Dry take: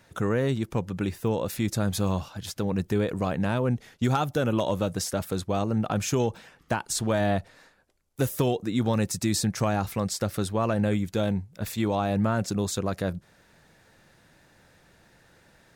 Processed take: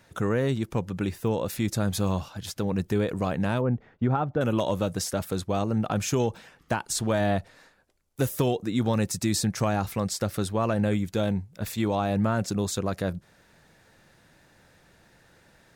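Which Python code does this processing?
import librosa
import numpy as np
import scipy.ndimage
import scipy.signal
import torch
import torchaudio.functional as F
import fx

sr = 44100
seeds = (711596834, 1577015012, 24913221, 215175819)

y = fx.lowpass(x, sr, hz=1400.0, slope=12, at=(3.61, 4.41))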